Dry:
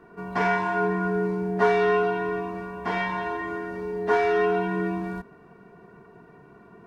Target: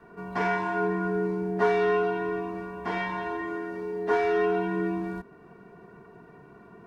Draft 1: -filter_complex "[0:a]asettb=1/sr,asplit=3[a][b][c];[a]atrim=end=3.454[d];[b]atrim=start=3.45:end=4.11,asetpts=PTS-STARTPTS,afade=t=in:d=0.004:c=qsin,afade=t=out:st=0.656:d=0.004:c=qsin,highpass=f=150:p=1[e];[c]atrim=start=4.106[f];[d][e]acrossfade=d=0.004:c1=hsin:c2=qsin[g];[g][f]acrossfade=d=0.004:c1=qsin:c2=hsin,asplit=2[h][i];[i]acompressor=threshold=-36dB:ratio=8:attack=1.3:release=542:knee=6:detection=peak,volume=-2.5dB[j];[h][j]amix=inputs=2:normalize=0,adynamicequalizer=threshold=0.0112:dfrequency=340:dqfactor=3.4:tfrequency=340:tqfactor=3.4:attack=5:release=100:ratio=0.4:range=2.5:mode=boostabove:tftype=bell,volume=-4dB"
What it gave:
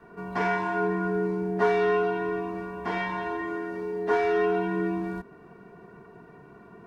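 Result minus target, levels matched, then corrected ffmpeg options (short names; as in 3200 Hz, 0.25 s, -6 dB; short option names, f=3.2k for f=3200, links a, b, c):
compressor: peak gain reduction -7 dB
-filter_complex "[0:a]asettb=1/sr,asplit=3[a][b][c];[a]atrim=end=3.454[d];[b]atrim=start=3.45:end=4.11,asetpts=PTS-STARTPTS,afade=t=in:d=0.004:c=qsin,afade=t=out:st=0.656:d=0.004:c=qsin,highpass=f=150:p=1[e];[c]atrim=start=4.106[f];[d][e]acrossfade=d=0.004:c1=hsin:c2=qsin[g];[g][f]acrossfade=d=0.004:c1=qsin:c2=hsin,asplit=2[h][i];[i]acompressor=threshold=-44dB:ratio=8:attack=1.3:release=542:knee=6:detection=peak,volume=-2.5dB[j];[h][j]amix=inputs=2:normalize=0,adynamicequalizer=threshold=0.0112:dfrequency=340:dqfactor=3.4:tfrequency=340:tqfactor=3.4:attack=5:release=100:ratio=0.4:range=2.5:mode=boostabove:tftype=bell,volume=-4dB"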